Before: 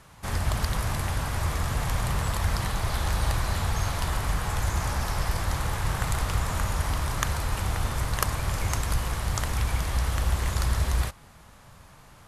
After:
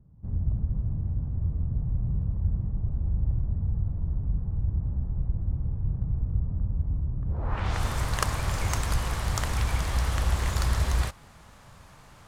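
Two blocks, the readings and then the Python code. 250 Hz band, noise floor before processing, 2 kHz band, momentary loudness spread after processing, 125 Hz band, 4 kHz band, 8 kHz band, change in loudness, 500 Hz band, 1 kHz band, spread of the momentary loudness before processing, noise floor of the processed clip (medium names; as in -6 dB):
-1.0 dB, -52 dBFS, -5.5 dB, 4 LU, +0.5 dB, -5.0 dB, -5.5 dB, -1.0 dB, -5.0 dB, -6.0 dB, 2 LU, -52 dBFS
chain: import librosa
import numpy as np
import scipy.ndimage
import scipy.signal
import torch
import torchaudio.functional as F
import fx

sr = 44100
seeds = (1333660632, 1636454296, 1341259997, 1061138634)

y = np.repeat(scipy.signal.resample_poly(x, 1, 2), 2)[:len(x)]
y = fx.filter_sweep_lowpass(y, sr, from_hz=190.0, to_hz=11000.0, start_s=7.25, end_s=7.82, q=0.88)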